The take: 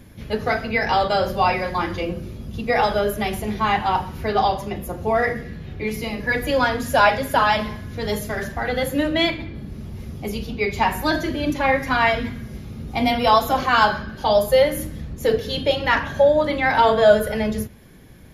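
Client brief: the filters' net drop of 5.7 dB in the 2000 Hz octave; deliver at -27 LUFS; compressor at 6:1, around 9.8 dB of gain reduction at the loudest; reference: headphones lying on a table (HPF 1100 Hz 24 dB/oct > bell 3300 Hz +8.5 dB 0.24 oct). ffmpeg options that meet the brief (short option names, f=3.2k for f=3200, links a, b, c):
-af "equalizer=f=2k:t=o:g=-7.5,acompressor=threshold=-20dB:ratio=6,highpass=f=1.1k:w=0.5412,highpass=f=1.1k:w=1.3066,equalizer=f=3.3k:t=o:w=0.24:g=8.5,volume=4.5dB"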